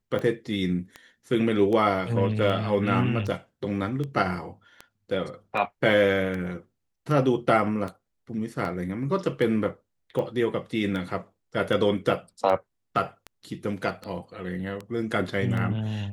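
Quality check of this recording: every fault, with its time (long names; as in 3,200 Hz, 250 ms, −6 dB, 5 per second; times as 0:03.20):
scratch tick 78 rpm −21 dBFS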